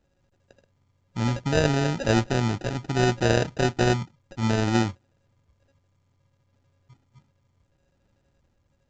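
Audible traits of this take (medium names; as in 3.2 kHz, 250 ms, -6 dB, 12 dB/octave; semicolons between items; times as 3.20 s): a buzz of ramps at a fixed pitch in blocks of 16 samples; phasing stages 8, 0.65 Hz, lowest notch 610–1700 Hz; aliases and images of a low sample rate 1.1 kHz, jitter 0%; µ-law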